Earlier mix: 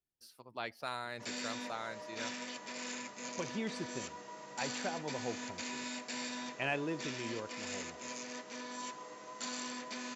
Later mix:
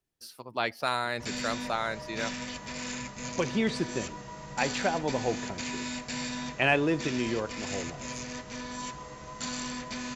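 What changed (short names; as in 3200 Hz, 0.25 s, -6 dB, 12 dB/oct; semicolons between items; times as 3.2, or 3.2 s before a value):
speech +11.0 dB; background: remove ladder high-pass 220 Hz, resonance 20%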